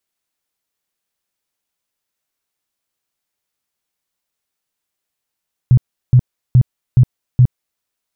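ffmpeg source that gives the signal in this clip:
-f lavfi -i "aevalsrc='0.596*sin(2*PI*125*mod(t,0.42))*lt(mod(t,0.42),8/125)':d=2.1:s=44100"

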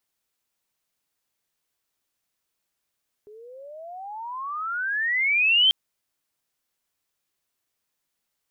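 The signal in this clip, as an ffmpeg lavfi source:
-f lavfi -i "aevalsrc='pow(10,(-14+29*(t/2.44-1))/20)*sin(2*PI*410*2.44/(35.5*log(2)/12)*(exp(35.5*log(2)/12*t/2.44)-1))':d=2.44:s=44100"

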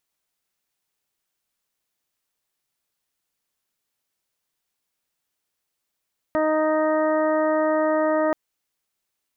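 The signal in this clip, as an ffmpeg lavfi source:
-f lavfi -i "aevalsrc='0.0631*sin(2*PI*311*t)+0.1*sin(2*PI*622*t)+0.0355*sin(2*PI*933*t)+0.0355*sin(2*PI*1244*t)+0.0126*sin(2*PI*1555*t)+0.0224*sin(2*PI*1866*t)':d=1.98:s=44100"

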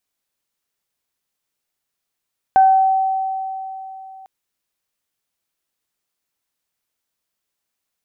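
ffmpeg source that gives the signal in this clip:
-f lavfi -i "aevalsrc='0.447*pow(10,-3*t/3.36)*sin(2*PI*766*t)+0.0501*pow(10,-3*t/0.58)*sin(2*PI*1532*t)':d=1.7:s=44100"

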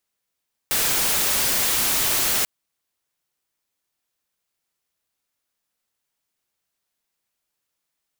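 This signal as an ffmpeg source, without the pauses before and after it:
-f lavfi -i "anoisesrc=c=white:a=0.154:d=1.74:r=44100:seed=1"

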